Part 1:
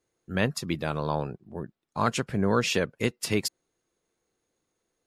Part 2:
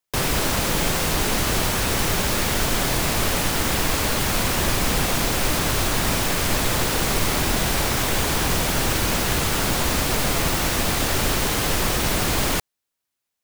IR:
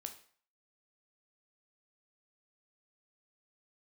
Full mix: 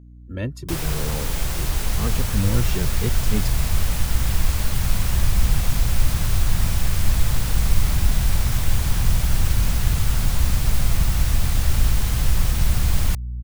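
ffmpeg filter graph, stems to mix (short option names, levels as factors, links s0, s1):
-filter_complex "[0:a]lowshelf=f=550:t=q:w=1.5:g=8,asplit=2[s0][s1];[s1]adelay=2,afreqshift=0.94[s2];[s0][s2]amix=inputs=2:normalize=1,volume=0.531[s3];[1:a]highshelf=f=6100:g=4.5,adelay=550,volume=0.355[s4];[s3][s4]amix=inputs=2:normalize=0,aeval=exprs='val(0)+0.00708*(sin(2*PI*60*n/s)+sin(2*PI*2*60*n/s)/2+sin(2*PI*3*60*n/s)/3+sin(2*PI*4*60*n/s)/4+sin(2*PI*5*60*n/s)/5)':c=same,asubboost=boost=10:cutoff=110"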